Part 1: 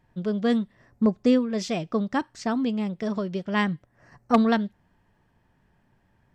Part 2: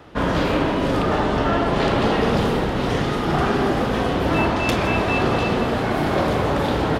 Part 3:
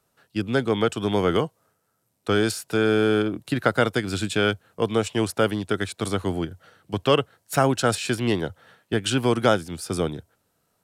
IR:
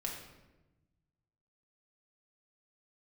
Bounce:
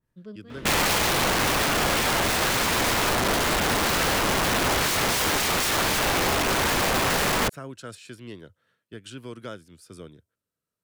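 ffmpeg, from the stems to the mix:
-filter_complex "[0:a]volume=0.2[s0];[1:a]adelay=500,volume=1.06,asplit=2[s1][s2];[s2]volume=0.562[s3];[2:a]volume=0.141,asplit=2[s4][s5];[s5]apad=whole_len=279634[s6];[s0][s6]sidechaincompress=threshold=0.002:ratio=8:attack=12:release=146[s7];[3:a]atrim=start_sample=2205[s8];[s3][s8]afir=irnorm=-1:irlink=0[s9];[s7][s1][s4][s9]amix=inputs=4:normalize=0,equalizer=f=780:w=4.8:g=-15,aeval=exprs='(mod(6.68*val(0)+1,2)-1)/6.68':c=same,adynamicequalizer=threshold=0.0126:dfrequency=1900:dqfactor=0.7:tfrequency=1900:tqfactor=0.7:attack=5:release=100:ratio=0.375:range=2:mode=cutabove:tftype=highshelf"

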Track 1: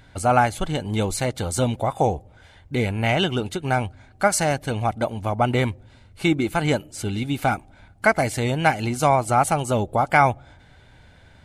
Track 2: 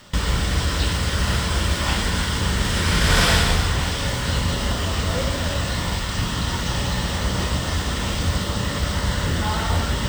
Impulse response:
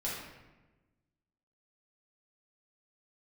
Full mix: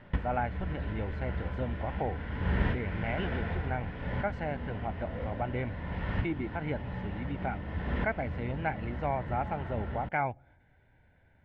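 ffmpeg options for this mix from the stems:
-filter_complex "[0:a]highshelf=f=2500:g=8,volume=0.211,asplit=2[s0][s1];[1:a]volume=0.562,asplit=2[s2][s3];[s3]volume=0.15[s4];[s1]apad=whole_len=444833[s5];[s2][s5]sidechaincompress=threshold=0.00282:ratio=8:attack=26:release=321[s6];[2:a]atrim=start_sample=2205[s7];[s4][s7]afir=irnorm=-1:irlink=0[s8];[s0][s6][s8]amix=inputs=3:normalize=0,lowpass=f=2100:w=0.5412,lowpass=f=2100:w=1.3066,equalizer=f=1200:t=o:w=0.34:g=-10.5"

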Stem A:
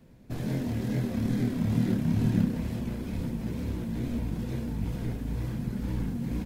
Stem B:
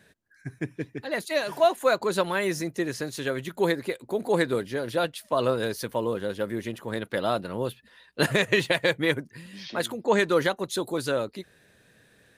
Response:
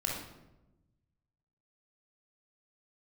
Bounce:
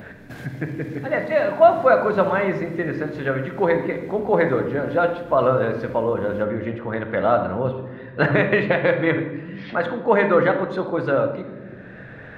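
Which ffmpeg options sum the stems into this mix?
-filter_complex "[0:a]highpass=f=160:p=1,volume=0.251,asplit=2[s0][s1];[s1]volume=0.282[s2];[1:a]lowpass=1400,volume=1.06,asplit=2[s3][s4];[s4]volume=0.596[s5];[2:a]atrim=start_sample=2205[s6];[s2][s5]amix=inputs=2:normalize=0[s7];[s7][s6]afir=irnorm=-1:irlink=0[s8];[s0][s3][s8]amix=inputs=3:normalize=0,adynamicequalizer=threshold=0.00708:dfrequency=1700:dqfactor=2.3:tfrequency=1700:tqfactor=2.3:attack=5:release=100:ratio=0.375:range=2:mode=cutabove:tftype=bell,acompressor=mode=upward:threshold=0.0398:ratio=2.5,equalizer=f=1800:w=0.76:g=7.5"

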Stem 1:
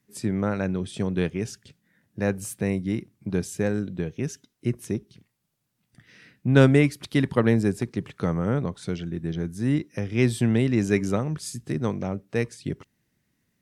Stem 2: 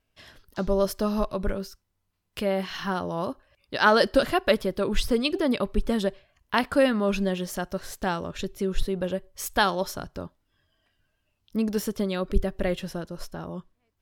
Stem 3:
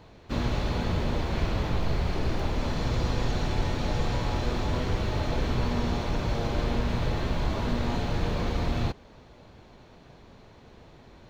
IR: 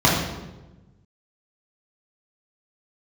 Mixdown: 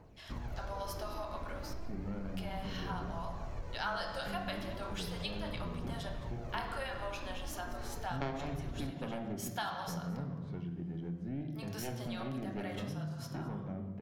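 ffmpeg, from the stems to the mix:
-filter_complex "[0:a]lowpass=2500,aeval=exprs='0.668*(cos(1*acos(clip(val(0)/0.668,-1,1)))-cos(1*PI/2))+0.335*(cos(3*acos(clip(val(0)/0.668,-1,1)))-cos(3*PI/2))+0.0299*(cos(6*acos(clip(val(0)/0.668,-1,1)))-cos(6*PI/2))':c=same,adelay=1650,volume=0.501,asplit=2[s0][s1];[s1]volume=0.0631[s2];[1:a]highpass=f=730:w=0.5412,highpass=f=730:w=1.3066,volume=0.596,asplit=3[s3][s4][s5];[s4]volume=0.0891[s6];[s5]volume=0.141[s7];[2:a]equalizer=f=3600:w=1.5:g=-12,aphaser=in_gain=1:out_gain=1:delay=3.9:decay=0.49:speed=0.34:type=triangular,volume=0.282[s8];[3:a]atrim=start_sample=2205[s9];[s2][s6]amix=inputs=2:normalize=0[s10];[s10][s9]afir=irnorm=-1:irlink=0[s11];[s7]aecho=0:1:215:1[s12];[s0][s3][s8][s11][s12]amix=inputs=5:normalize=0,acompressor=threshold=0.0112:ratio=3"

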